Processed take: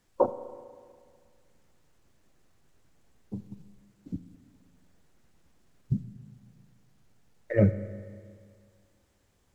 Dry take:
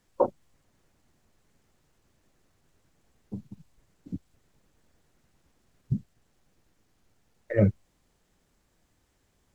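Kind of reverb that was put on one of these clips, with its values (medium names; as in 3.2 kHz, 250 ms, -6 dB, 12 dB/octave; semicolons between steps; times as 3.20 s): spring tank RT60 2 s, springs 34/40 ms, chirp 45 ms, DRR 12 dB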